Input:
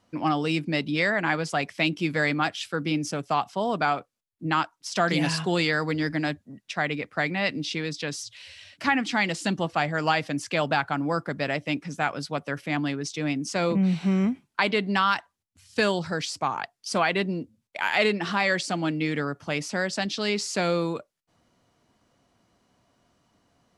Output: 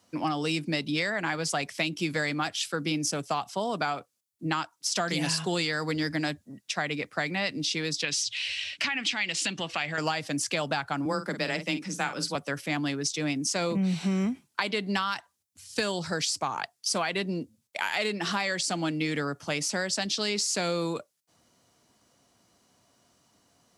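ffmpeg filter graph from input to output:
-filter_complex "[0:a]asettb=1/sr,asplit=3[s0][s1][s2];[s0]atrim=end=8.044[s3];[s1]atrim=start=8.04:end=9.98,asetpts=PTS-STARTPTS,afade=t=in:d=0.004:c=qsin,afade=t=out:st=1.936:d=0.004:c=qsin,lowpass=8800,acompressor=threshold=0.0282:ratio=3:attack=3.2:release=140:knee=1:detection=peak,equalizer=f=2600:t=o:w=1.3:g=14[s4];[s2]atrim=start=9.976[s5];[s3][s4]acrossfade=d=0.004:c1=hsin:c2=qsin[s6];[s6][s5]acrossfade=d=0.004:c1=qsin:c2=hsin,asettb=1/sr,asplit=3[s7][s8][s9];[s7]atrim=end=11.054[s10];[s8]atrim=start=11.05:end=12.35,asetpts=PTS-STARTPTS,afade=t=in:d=0.004:c=qsin,afade=t=out:st=1.296:d=0.004:c=qsin,equalizer=f=670:t=o:w=0.23:g=-6,afreqshift=17,asplit=2[s11][s12];[s12]adelay=48,volume=0.282[s13];[s11][s13]amix=inputs=2:normalize=0,atrim=end_sample=57330[s14];[s9]atrim=start=12.346[s15];[s10][s14]acrossfade=d=0.004:c1=hsin:c2=qsin[s16];[s16][s15]acrossfade=d=0.004:c1=qsin:c2=hsin,highpass=57,bass=f=250:g=-2,treble=f=4000:g=10,acrossover=split=120[s17][s18];[s18]acompressor=threshold=0.0562:ratio=6[s19];[s17][s19]amix=inputs=2:normalize=0"

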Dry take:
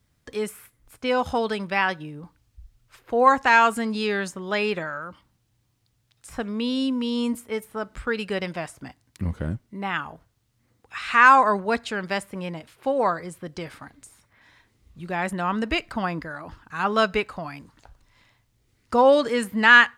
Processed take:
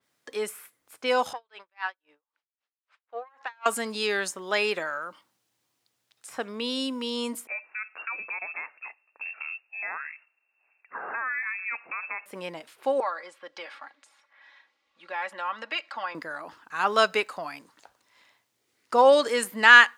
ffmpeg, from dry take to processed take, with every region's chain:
-filter_complex "[0:a]asettb=1/sr,asplit=3[s0][s1][s2];[s0]atrim=end=1.334[s3];[s1]atrim=start=1.33:end=3.66,asetpts=PTS-STARTPTS,afade=t=in:d=0.004:c=qsin,afade=t=out:st=2.326:d=0.004:c=qsin,aeval=exprs='(tanh(2.51*val(0)+0.7)-tanh(0.7))/2.51':c=same,highpass=710,lowpass=3200,aeval=exprs='val(0)*pow(10,-40*(0.5-0.5*cos(2*PI*3.8*n/s))/20)':c=same[s4];[s2]atrim=start=3.656[s5];[s3][s4]acrossfade=d=0.004:c1=hsin:c2=qsin[s6];[s6][s5]acrossfade=d=0.004:c1=qsin:c2=hsin,asettb=1/sr,asplit=3[s7][s8][s9];[s7]atrim=end=7.474[s10];[s8]atrim=start=7.47:end=12.26,asetpts=PTS-STARTPTS,afade=t=in:d=0.004:c=qsin,afade=t=out:st=4.786:d=0.004:c=qsin,acompressor=threshold=0.0355:ratio=5:attack=3.2:release=140:knee=1:detection=peak,lowshelf=f=180:g=-6.5,lowpass=f=2400:t=q:w=0.5098,lowpass=f=2400:t=q:w=0.6013,lowpass=f=2400:t=q:w=0.9,lowpass=f=2400:t=q:w=2.563,afreqshift=-2800[s11];[s9]atrim=start=12.256[s12];[s10][s11]acrossfade=d=0.004:c1=hsin:c2=qsin[s13];[s13][s12]acrossfade=d=0.004:c1=qsin:c2=hsin,asettb=1/sr,asplit=3[s14][s15][s16];[s14]atrim=end=13.004[s17];[s15]atrim=start=13:end=16.15,asetpts=PTS-STARTPTS,afade=t=in:d=0.004:c=qsin,afade=t=out:st=3.146:d=0.004:c=qsin,acrossover=split=550 4900:gain=0.126 1 0.0708[s18][s19][s20];[s18][s19][s20]amix=inputs=3:normalize=0,aecho=1:1:3.6:0.64,atrim=end_sample=138915,acompressor=threshold=0.0178:ratio=1.5:attack=3.2:release=140:knee=1:detection=peak[s21];[s16]atrim=start=16.146[s22];[s17][s21]acrossfade=d=0.004:c1=hsin:c2=qsin[s23];[s23][s22]acrossfade=d=0.004:c1=qsin:c2=hsin,highpass=390,adynamicequalizer=threshold=0.0126:dfrequency=4300:dqfactor=0.7:tfrequency=4300:tqfactor=0.7:attack=5:release=100:ratio=0.375:range=3:mode=boostabove:tftype=highshelf"

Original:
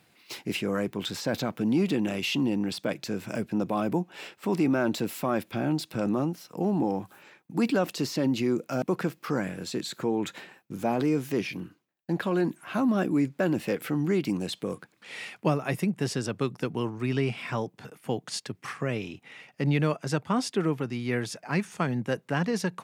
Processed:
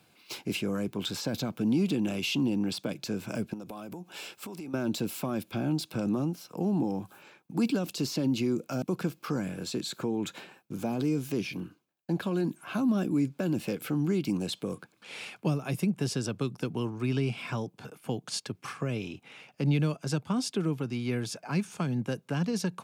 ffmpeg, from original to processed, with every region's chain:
-filter_complex "[0:a]asettb=1/sr,asplit=3[s0][s1][s2];[s0]atrim=end=3.534[s3];[s1]atrim=start=3.53:end=4.74,asetpts=PTS-STARTPTS,afade=t=in:d=0.004:c=qsin,afade=t=out:st=1.206:d=0.004:c=qsin,highshelf=f=3800:g=11,acompressor=threshold=0.0158:ratio=20:attack=3.2:release=140:knee=1:detection=peak[s4];[s2]atrim=start=4.736[s5];[s3][s4]acrossfade=d=0.004:c1=hsin:c2=qsin[s6];[s6][s5]acrossfade=d=0.004:c1=qsin:c2=hsin,acrossover=split=310|3000[s7][s8][s9];[s8]acompressor=threshold=0.0178:ratio=6[s10];[s7][s10][s9]amix=inputs=3:normalize=0,bandreject=f=1900:w=5.4"

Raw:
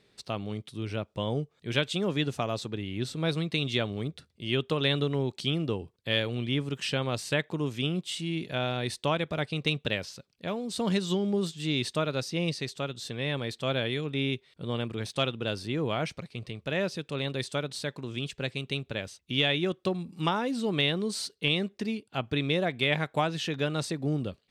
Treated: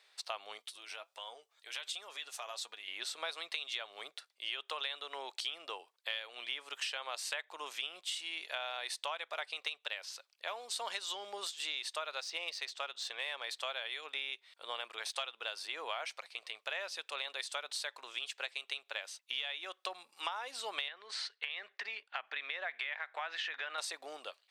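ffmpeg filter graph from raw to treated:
-filter_complex "[0:a]asettb=1/sr,asplit=3[s0][s1][s2];[s0]atrim=end=0.584[s3];[s1]atrim=start=0.58:end=2.88,asetpts=PTS-STARTPTS,afade=t=in:d=0.004:c=qsin,afade=t=out:st=2.296:d=0.004:c=qsin,highshelf=f=3700:g=8,acompressor=threshold=0.0251:ratio=6:attack=3.2:release=140:knee=1:detection=peak,flanger=delay=4.1:depth=2.5:regen=62:speed=1.4:shape=sinusoidal[s4];[s2]atrim=start=2.876[s5];[s3][s4]acrossfade=d=0.004:c1=hsin:c2=qsin[s6];[s6][s5]acrossfade=d=0.004:c1=qsin:c2=hsin,asettb=1/sr,asplit=3[s7][s8][s9];[s7]atrim=end=12.214[s10];[s8]atrim=start=12.21:end=13.44,asetpts=PTS-STARTPTS,afade=t=in:d=0.004:c=qsin,afade=t=out:st=1.226:d=0.004:c=qsin,adynamicsmooth=sensitivity=5.5:basefreq=6400,bandreject=f=58.28:t=h:w=4,bandreject=f=116.56:t=h:w=4,bandreject=f=174.84:t=h:w=4[s11];[s9]atrim=start=13.436[s12];[s10][s11]acrossfade=d=0.004:c1=hsin:c2=qsin[s13];[s13][s12]acrossfade=d=0.004:c1=qsin:c2=hsin,asettb=1/sr,asplit=3[s14][s15][s16];[s14]atrim=end=20.884[s17];[s15]atrim=start=20.88:end=23.78,asetpts=PTS-STARTPTS,afade=t=in:d=0.004:c=qsin,afade=t=out:st=2.896:d=0.004:c=qsin,acompressor=threshold=0.0282:ratio=6:attack=3.2:release=140:knee=1:detection=peak,highpass=140,lowpass=3900,equalizer=f=1800:t=o:w=0.83:g=10[s18];[s16]atrim=start=23.776[s19];[s17][s18]acrossfade=d=0.004:c1=hsin:c2=qsin[s20];[s20][s19]acrossfade=d=0.004:c1=qsin:c2=hsin,highpass=f=730:w=0.5412,highpass=f=730:w=1.3066,acompressor=threshold=0.0141:ratio=10,volume=1.26"

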